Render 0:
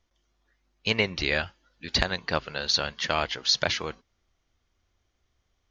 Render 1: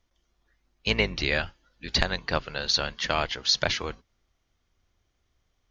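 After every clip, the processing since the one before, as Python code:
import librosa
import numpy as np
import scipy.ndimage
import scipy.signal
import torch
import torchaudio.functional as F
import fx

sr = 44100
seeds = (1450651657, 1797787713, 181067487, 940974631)

y = fx.octave_divider(x, sr, octaves=2, level_db=-2.0)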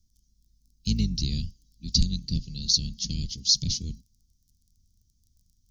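y = fx.dmg_crackle(x, sr, seeds[0], per_s=21.0, level_db=-52.0)
y = scipy.signal.sosfilt(scipy.signal.ellip(3, 1.0, 70, [210.0, 5100.0], 'bandstop', fs=sr, output='sos'), y)
y = F.gain(torch.from_numpy(y), 7.0).numpy()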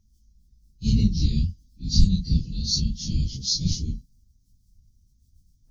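y = fx.phase_scramble(x, sr, seeds[1], window_ms=100)
y = fx.low_shelf(y, sr, hz=450.0, db=10.0)
y = F.gain(torch.from_numpy(y), -2.5).numpy()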